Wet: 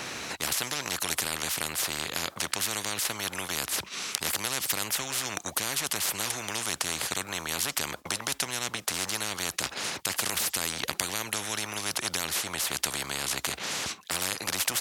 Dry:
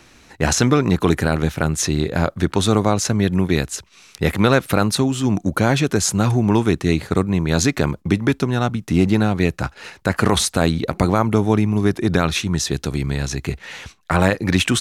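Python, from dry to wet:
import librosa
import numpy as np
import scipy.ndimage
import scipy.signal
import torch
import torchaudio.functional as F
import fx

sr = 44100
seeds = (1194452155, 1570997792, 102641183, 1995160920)

y = scipy.signal.sosfilt(scipy.signal.butter(2, 170.0, 'highpass', fs=sr, output='sos'), x)
y = fx.spectral_comp(y, sr, ratio=10.0)
y = y * 10.0 ** (-1.0 / 20.0)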